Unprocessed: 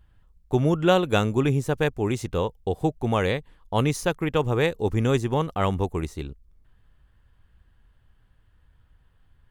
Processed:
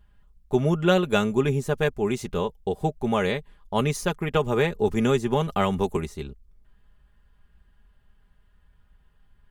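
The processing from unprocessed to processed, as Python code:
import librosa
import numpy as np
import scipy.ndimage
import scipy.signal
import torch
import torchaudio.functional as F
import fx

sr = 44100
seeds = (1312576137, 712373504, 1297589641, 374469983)

y = x + 0.6 * np.pad(x, (int(4.9 * sr / 1000.0), 0))[:len(x)]
y = fx.band_squash(y, sr, depth_pct=100, at=(4.34, 5.97))
y = y * 10.0 ** (-1.5 / 20.0)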